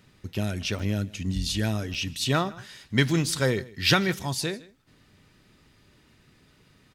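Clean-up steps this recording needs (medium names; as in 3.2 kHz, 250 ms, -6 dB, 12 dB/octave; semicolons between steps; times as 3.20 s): interpolate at 0.79/1.94 s, 5.9 ms; inverse comb 157 ms -21.5 dB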